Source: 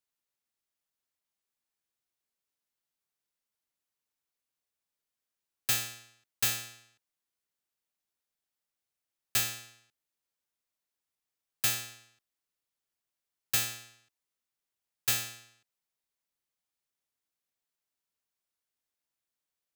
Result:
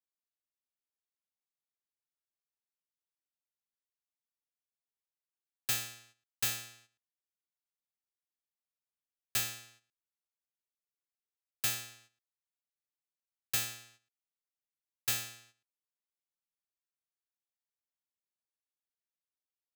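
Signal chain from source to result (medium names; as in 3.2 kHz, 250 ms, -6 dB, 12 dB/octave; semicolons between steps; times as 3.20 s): gate -59 dBFS, range -10 dB; trim -4 dB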